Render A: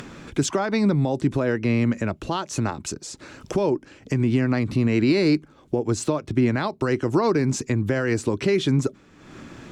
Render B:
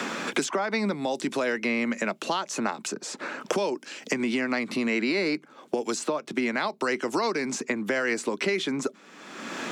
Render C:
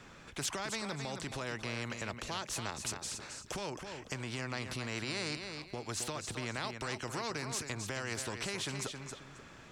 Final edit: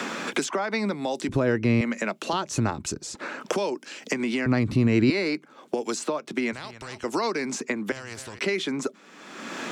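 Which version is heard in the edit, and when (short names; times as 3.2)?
B
1.29–1.81 from A
2.33–3.15 from A
4.46–5.1 from A
6.53–7.04 from C
7.92–8.39 from C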